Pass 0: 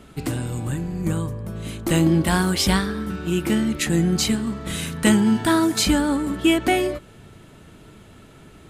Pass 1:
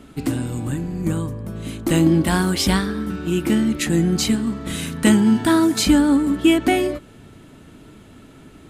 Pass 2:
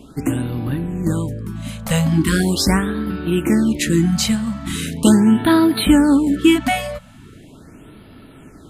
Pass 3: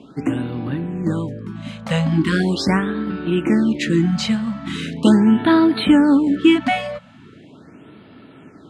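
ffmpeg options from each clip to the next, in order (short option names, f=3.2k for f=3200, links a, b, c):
-af "equalizer=f=270:w=3.1:g=7.5"
-af "afftfilt=real='re*(1-between(b*sr/1024,310*pow(7300/310,0.5+0.5*sin(2*PI*0.4*pts/sr))/1.41,310*pow(7300/310,0.5+0.5*sin(2*PI*0.4*pts/sr))*1.41))':imag='im*(1-between(b*sr/1024,310*pow(7300/310,0.5+0.5*sin(2*PI*0.4*pts/sr))/1.41,310*pow(7300/310,0.5+0.5*sin(2*PI*0.4*pts/sr))*1.41))':win_size=1024:overlap=0.75,volume=2.5dB"
-af "highpass=140,lowpass=4k"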